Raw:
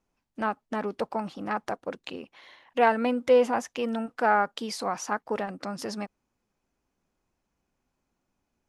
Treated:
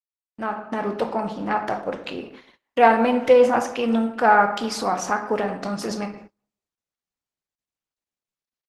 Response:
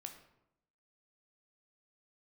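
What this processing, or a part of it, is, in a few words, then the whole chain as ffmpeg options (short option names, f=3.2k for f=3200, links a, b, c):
speakerphone in a meeting room: -filter_complex "[0:a]asettb=1/sr,asplit=3[a][b][c];[a]atrim=end=1.104[d];[b]atrim=start=1.1:end=1.81,asetpts=PTS-STARTPTS,afade=t=in:d=0.004:c=qsin,afade=t=out:st=0.706:d=0.004:c=qsin,highshelf=f=7k:g=-4.5[e];[c]atrim=start=1.806[f];[d][e]acrossfade=d=0.004:c1=hsin:c2=qsin[g];[g][f]acrossfade=d=0.004:c1=qsin:c2=hsin[h];[1:a]atrim=start_sample=2205[i];[h][i]afir=irnorm=-1:irlink=0,asplit=2[j][k];[k]adelay=380,highpass=300,lowpass=3.4k,asoftclip=type=hard:threshold=-22dB,volume=-26dB[l];[j][l]amix=inputs=2:normalize=0,dynaudnorm=f=120:g=11:m=7dB,agate=range=-30dB:threshold=-46dB:ratio=16:detection=peak,volume=4.5dB" -ar 48000 -c:a libopus -b:a 16k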